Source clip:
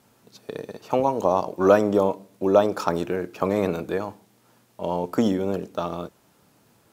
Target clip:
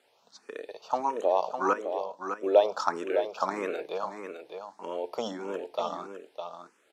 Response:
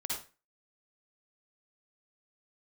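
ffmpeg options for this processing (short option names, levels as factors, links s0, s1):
-filter_complex "[0:a]asettb=1/sr,asplit=3[s0][s1][s2];[s0]atrim=end=1.734[s3];[s1]atrim=start=1.73:end=2.43,asetpts=PTS-STARTPTS,afade=t=in:d=0.004:c=qsin,afade=t=out:st=0.696:d=0.004:c=qsin,acompressor=threshold=0.00398:ratio=1.5[s4];[s2]atrim=start=2.426[s5];[s3][s4]acrossfade=d=0.004:c1=hsin:c2=qsin[s6];[s6][s5]acrossfade=d=0.004:c1=qsin:c2=hsin,highpass=510,lowpass=6700,aecho=1:1:607:0.422,asplit=2[s7][s8];[s8]afreqshift=1.6[s9];[s7][s9]amix=inputs=2:normalize=1"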